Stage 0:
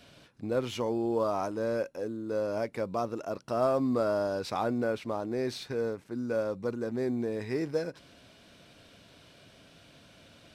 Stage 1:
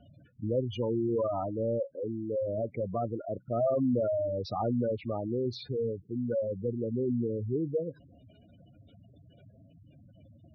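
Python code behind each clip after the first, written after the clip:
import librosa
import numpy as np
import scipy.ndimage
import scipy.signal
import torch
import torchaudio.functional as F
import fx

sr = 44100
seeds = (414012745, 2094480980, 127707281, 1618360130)

y = fx.peak_eq(x, sr, hz=99.0, db=8.5, octaves=1.3)
y = fx.spec_gate(y, sr, threshold_db=-10, keep='strong')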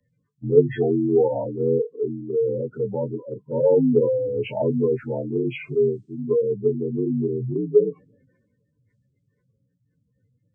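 y = fx.partial_stretch(x, sr, pct=80)
y = fx.small_body(y, sr, hz=(430.0, 660.0, 1300.0, 3300.0), ring_ms=65, db=7)
y = fx.band_widen(y, sr, depth_pct=70)
y = y * 10.0 ** (7.5 / 20.0)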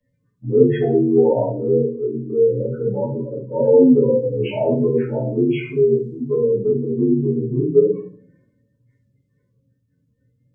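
y = fx.room_shoebox(x, sr, seeds[0], volume_m3=340.0, walls='furnished', distance_m=5.6)
y = y * 10.0 ** (-5.5 / 20.0)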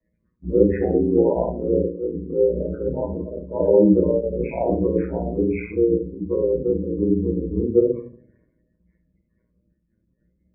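y = x * np.sin(2.0 * np.pi * 58.0 * np.arange(len(x)) / sr)
y = fx.brickwall_lowpass(y, sr, high_hz=2600.0)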